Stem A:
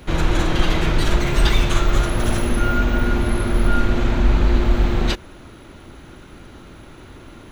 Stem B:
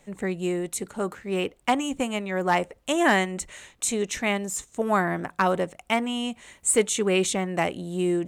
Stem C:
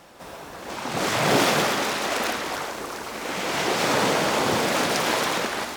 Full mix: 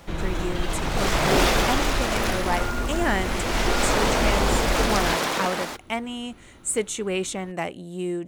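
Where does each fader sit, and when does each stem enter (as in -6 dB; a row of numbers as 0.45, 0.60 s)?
-9.5, -4.0, -1.0 dB; 0.00, 0.00, 0.00 s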